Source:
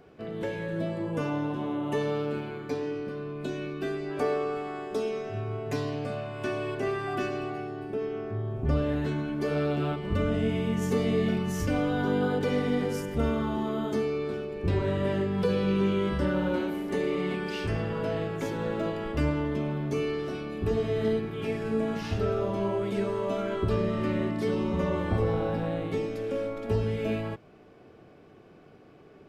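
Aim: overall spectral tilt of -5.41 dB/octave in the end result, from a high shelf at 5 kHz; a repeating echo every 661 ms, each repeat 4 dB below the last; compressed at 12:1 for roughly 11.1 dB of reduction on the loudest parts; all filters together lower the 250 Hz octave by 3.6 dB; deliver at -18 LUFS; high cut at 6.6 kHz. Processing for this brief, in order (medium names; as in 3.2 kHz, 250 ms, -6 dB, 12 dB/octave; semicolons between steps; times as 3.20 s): low-pass 6.6 kHz; peaking EQ 250 Hz -5 dB; treble shelf 5 kHz +8 dB; compression 12:1, threshold -34 dBFS; feedback delay 661 ms, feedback 63%, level -4 dB; trim +18.5 dB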